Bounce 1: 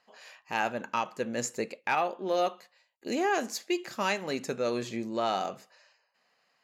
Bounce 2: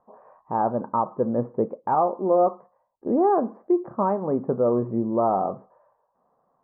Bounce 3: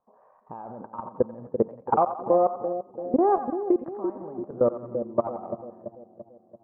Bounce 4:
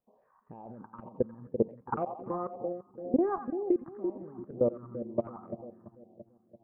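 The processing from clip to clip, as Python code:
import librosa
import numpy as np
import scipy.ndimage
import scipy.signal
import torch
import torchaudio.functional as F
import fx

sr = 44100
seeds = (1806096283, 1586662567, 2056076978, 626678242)

y1 = scipy.signal.sosfilt(scipy.signal.ellip(4, 1.0, 70, 1100.0, 'lowpass', fs=sr, output='sos'), x)
y1 = fx.low_shelf(y1, sr, hz=110.0, db=10.0)
y1 = y1 * 10.0 ** (8.5 / 20.0)
y2 = fx.level_steps(y1, sr, step_db=20)
y2 = fx.echo_split(y2, sr, split_hz=650.0, low_ms=338, high_ms=88, feedback_pct=52, wet_db=-7)
y2 = fx.transient(y2, sr, attack_db=3, sustain_db=-2)
y3 = fx.phaser_stages(y2, sr, stages=4, low_hz=540.0, high_hz=1500.0, hz=2.0, feedback_pct=25)
y3 = y3 * 10.0 ** (-3.0 / 20.0)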